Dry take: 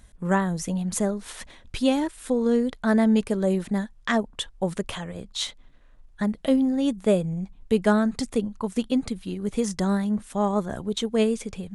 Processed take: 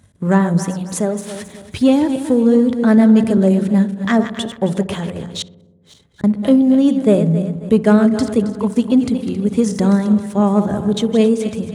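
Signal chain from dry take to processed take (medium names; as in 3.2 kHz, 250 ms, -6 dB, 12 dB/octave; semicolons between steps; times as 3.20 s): backward echo that repeats 135 ms, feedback 57%, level -10 dB; 0.63–1.36 s: peaking EQ 120 Hz -8.5 dB 2.2 oct; waveshaping leveller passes 1; high-pass 79 Hz 24 dB/octave; 5.42–6.24 s: inverted gate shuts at -31 dBFS, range -42 dB; bass shelf 460 Hz +9 dB; hum notches 60/120/180 Hz; filtered feedback delay 62 ms, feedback 79%, low-pass 1.2 kHz, level -16 dB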